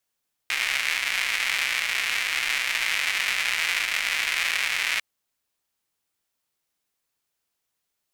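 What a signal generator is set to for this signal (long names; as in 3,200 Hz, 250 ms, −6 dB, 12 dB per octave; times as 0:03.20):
rain-like ticks over hiss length 4.50 s, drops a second 280, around 2,200 Hz, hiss −29 dB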